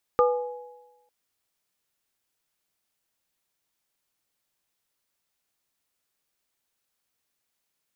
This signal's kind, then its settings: sine partials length 0.90 s, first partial 492 Hz, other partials 836/1210 Hz, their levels -8/-2.5 dB, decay 1.03 s, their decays 1.23/0.35 s, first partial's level -16 dB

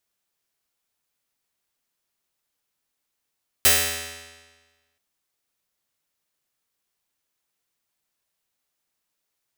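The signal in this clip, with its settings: plucked string E2, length 1.33 s, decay 1.38 s, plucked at 0.49, bright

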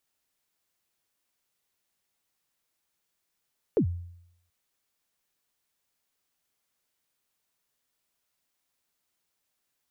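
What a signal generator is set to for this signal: kick drum length 0.73 s, from 510 Hz, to 87 Hz, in 88 ms, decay 0.75 s, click off, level -17.5 dB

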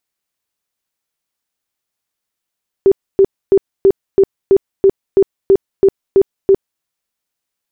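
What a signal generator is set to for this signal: tone bursts 390 Hz, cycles 22, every 0.33 s, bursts 12, -4.5 dBFS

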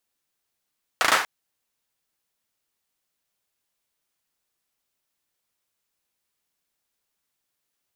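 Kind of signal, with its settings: hand clap length 0.24 s, apart 36 ms, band 1.2 kHz, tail 0.43 s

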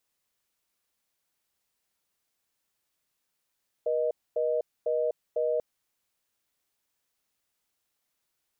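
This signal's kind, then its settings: call progress tone reorder tone, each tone -27 dBFS 1.74 s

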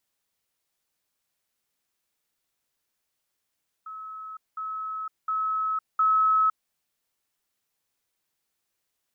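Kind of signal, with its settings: level ladder 1.29 kHz -36 dBFS, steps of 6 dB, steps 4, 0.51 s 0.20 s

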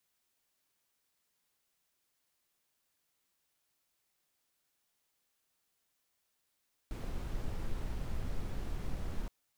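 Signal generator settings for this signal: noise brown, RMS -35.5 dBFS 2.37 s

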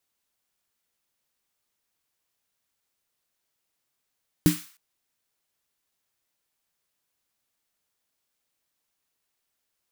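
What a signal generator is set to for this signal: snare drum length 0.31 s, tones 170 Hz, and 300 Hz, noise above 1.1 kHz, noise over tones -12 dB, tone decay 0.20 s, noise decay 0.48 s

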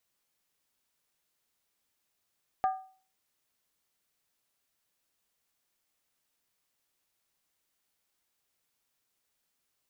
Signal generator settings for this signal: skin hit, lowest mode 759 Hz, decay 0.43 s, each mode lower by 10 dB, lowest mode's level -21.5 dB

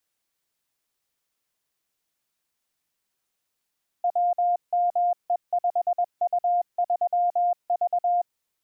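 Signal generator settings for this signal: Morse "WME5U3V" 21 wpm 705 Hz -19 dBFS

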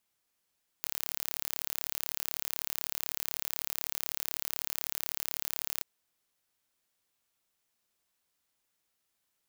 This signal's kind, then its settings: pulse train 36 per s, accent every 0, -6.5 dBFS 5.00 s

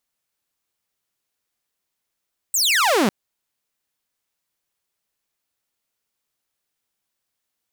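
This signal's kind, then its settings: laser zap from 8.4 kHz, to 180 Hz, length 0.55 s saw, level -12.5 dB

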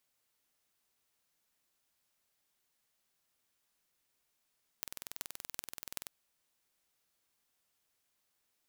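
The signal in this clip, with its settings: pulse train 21 per s, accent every 8, -9.5 dBFS 1.28 s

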